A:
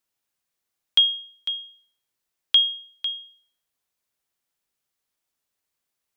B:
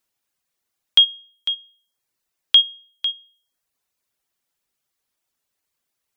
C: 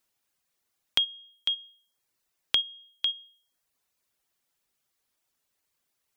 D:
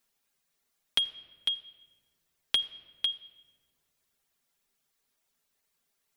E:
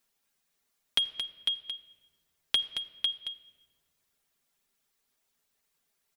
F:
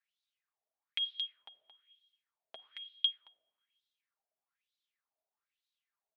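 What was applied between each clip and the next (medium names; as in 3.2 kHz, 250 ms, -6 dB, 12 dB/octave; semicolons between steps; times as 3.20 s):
reverb removal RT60 0.65 s; trim +4.5 dB
compression 4:1, threshold -25 dBFS, peak gain reduction 13.5 dB
in parallel at -4 dB: hard clipper -22 dBFS, distortion -9 dB; on the sum: reverberation RT60 1.7 s, pre-delay 4 ms, DRR 6.5 dB; trim -4.5 dB
delay 223 ms -9 dB
wah-wah 1.1 Hz 620–3900 Hz, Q 5.1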